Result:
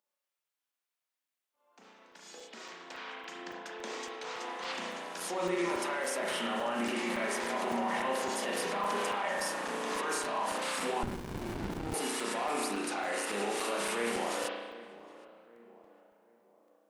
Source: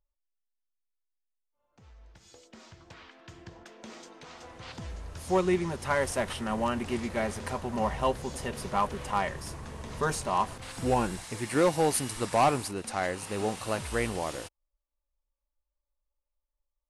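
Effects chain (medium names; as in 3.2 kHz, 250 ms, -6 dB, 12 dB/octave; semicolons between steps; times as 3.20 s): steep high-pass 190 Hz 48 dB/octave; bass shelf 370 Hz -11 dB; gain riding within 4 dB 2 s; peak limiter -35 dBFS, peak gain reduction 20.5 dB; on a send: tape echo 765 ms, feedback 51%, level -15 dB, low-pass 1.3 kHz; on the sum: spring tank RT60 1.3 s, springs 34 ms, chirp 65 ms, DRR -2.5 dB; crackling interface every 0.28 s, samples 128, zero, from 0.44 s; 11.03–11.94 s: sliding maximum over 65 samples; trim +7 dB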